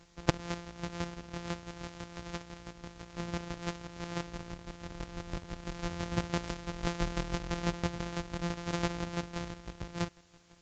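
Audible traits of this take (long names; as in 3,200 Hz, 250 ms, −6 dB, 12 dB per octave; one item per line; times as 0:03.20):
a buzz of ramps at a fixed pitch in blocks of 256 samples
chopped level 6 Hz, depth 60%, duty 25%
a quantiser's noise floor 12 bits, dither triangular
Ogg Vorbis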